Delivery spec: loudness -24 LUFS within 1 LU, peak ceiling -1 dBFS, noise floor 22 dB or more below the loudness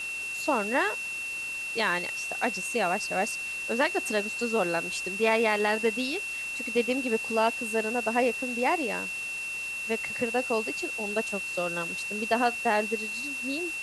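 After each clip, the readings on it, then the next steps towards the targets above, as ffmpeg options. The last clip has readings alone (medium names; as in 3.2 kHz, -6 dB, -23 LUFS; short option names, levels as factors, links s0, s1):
steady tone 2.7 kHz; tone level -32 dBFS; noise floor -35 dBFS; noise floor target -50 dBFS; loudness -28.0 LUFS; peak level -11.5 dBFS; loudness target -24.0 LUFS
-> -af "bandreject=f=2700:w=30"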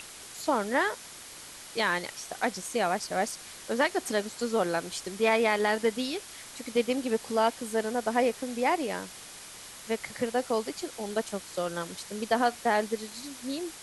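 steady tone not found; noise floor -46 dBFS; noise floor target -52 dBFS
-> -af "afftdn=nr=6:nf=-46"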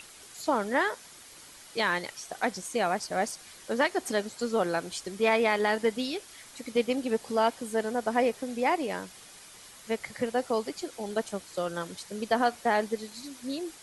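noise floor -50 dBFS; noise floor target -52 dBFS
-> -af "afftdn=nr=6:nf=-50"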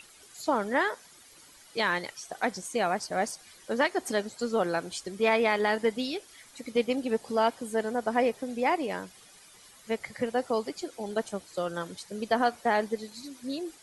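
noise floor -55 dBFS; loudness -30.0 LUFS; peak level -12.0 dBFS; loudness target -24.0 LUFS
-> -af "volume=2"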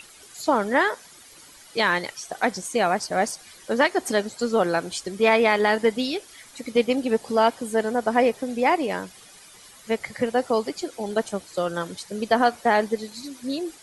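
loudness -24.0 LUFS; peak level -6.0 dBFS; noise floor -49 dBFS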